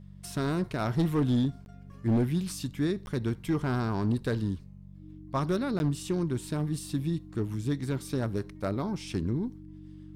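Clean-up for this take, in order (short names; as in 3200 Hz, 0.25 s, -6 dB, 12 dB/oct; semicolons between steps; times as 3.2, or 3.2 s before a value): clip repair -20.5 dBFS; de-hum 47.6 Hz, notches 4; notch 310 Hz, Q 30; interpolate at 1.65/3.06/5.79, 11 ms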